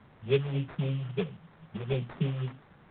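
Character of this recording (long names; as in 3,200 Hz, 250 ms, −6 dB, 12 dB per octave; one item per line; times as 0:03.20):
a quantiser's noise floor 10 bits, dither triangular
phaser sweep stages 4, 3.7 Hz, lowest notch 320–2,000 Hz
aliases and images of a low sample rate 3,000 Hz, jitter 20%
mu-law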